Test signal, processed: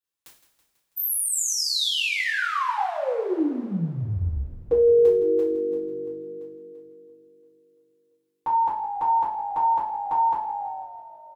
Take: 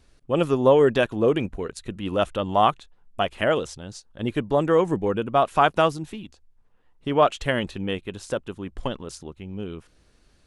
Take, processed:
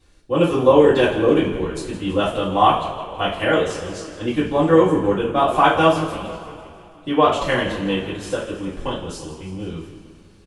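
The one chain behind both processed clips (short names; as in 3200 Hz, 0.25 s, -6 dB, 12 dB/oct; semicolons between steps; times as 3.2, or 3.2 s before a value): on a send: frequency-shifting echo 0.164 s, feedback 61%, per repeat -49 Hz, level -13.5 dB; on the sum: two-slope reverb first 0.42 s, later 2.9 s, from -21 dB, DRR -9 dB; gain -5 dB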